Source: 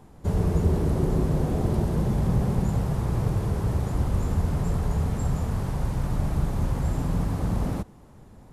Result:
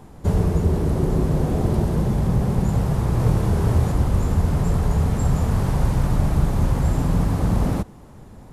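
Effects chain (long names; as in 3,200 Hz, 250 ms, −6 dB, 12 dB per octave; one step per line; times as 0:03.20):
speech leveller 0.5 s
0:03.17–0:03.92: double-tracking delay 25 ms −3.5 dB
level +5 dB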